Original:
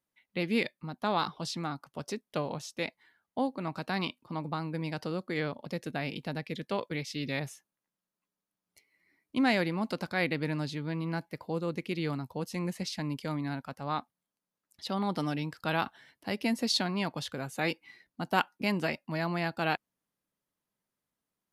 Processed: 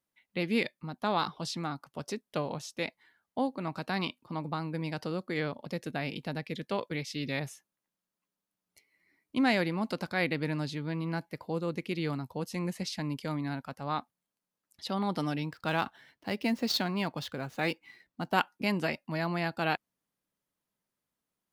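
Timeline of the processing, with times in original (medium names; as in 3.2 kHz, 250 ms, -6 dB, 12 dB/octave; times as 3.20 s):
15.45–18.33 s: median filter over 5 samples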